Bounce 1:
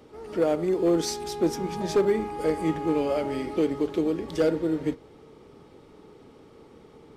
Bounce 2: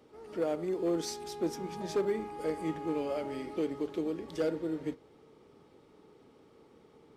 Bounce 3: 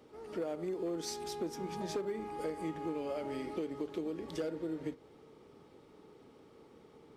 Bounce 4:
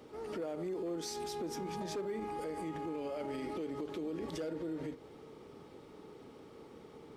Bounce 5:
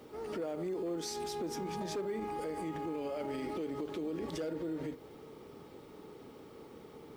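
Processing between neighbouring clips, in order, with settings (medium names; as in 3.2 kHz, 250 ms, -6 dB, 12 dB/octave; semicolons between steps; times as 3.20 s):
bass shelf 74 Hz -9 dB; trim -8 dB
compression 6:1, threshold -35 dBFS, peak gain reduction 9 dB; trim +1 dB
peak limiter -37 dBFS, peak gain reduction 10.5 dB; trim +5 dB
added noise violet -75 dBFS; trim +1.5 dB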